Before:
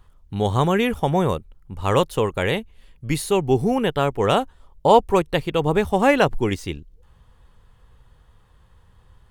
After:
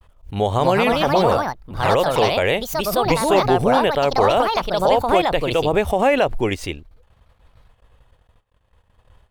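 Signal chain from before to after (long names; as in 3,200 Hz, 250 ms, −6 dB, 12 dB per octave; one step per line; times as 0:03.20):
noise gate −50 dBFS, range −54 dB
graphic EQ with 15 bands 160 Hz −5 dB, 630 Hz +9 dB, 2,500 Hz +6 dB
brickwall limiter −8 dBFS, peak gain reduction 11 dB
delay with pitch and tempo change per echo 332 ms, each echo +4 semitones, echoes 2
background raised ahead of every attack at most 140 dB per second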